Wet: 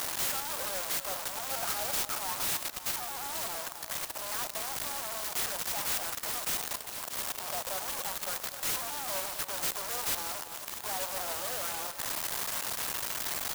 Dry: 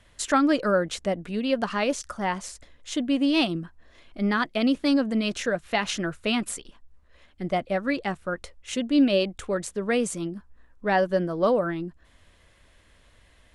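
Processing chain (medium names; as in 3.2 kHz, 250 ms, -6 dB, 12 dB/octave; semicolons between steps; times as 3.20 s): one-bit comparator; two-band feedback delay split 1.6 kHz, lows 260 ms, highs 638 ms, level -13 dB; gain riding 0.5 s; high-pass 720 Hz 24 dB/octave; peak limiter -23 dBFS, peak gain reduction 8.5 dB; 1.49–2.01 s: comb 1.4 ms, depth 58%; 2.91–4.24 s: low-pass 4.4 kHz 12 dB/octave; sampling jitter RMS 0.14 ms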